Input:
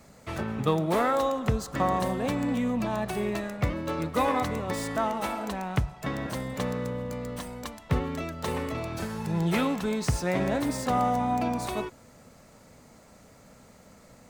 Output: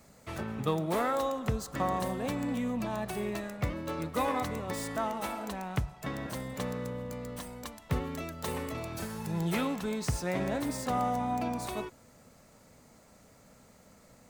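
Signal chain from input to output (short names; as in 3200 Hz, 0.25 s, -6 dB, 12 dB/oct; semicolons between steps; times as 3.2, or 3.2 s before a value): high shelf 8000 Hz +6 dB, from 7.82 s +11 dB, from 9.54 s +4.5 dB; gain -5 dB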